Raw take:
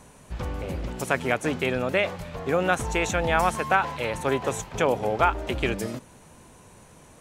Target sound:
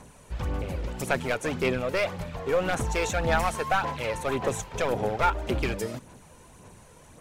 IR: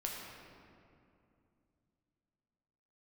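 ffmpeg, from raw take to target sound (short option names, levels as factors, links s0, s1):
-af "aeval=exprs='clip(val(0),-1,0.0891)':c=same,aphaser=in_gain=1:out_gain=1:delay=2.2:decay=0.41:speed=1.8:type=sinusoidal,volume=0.794"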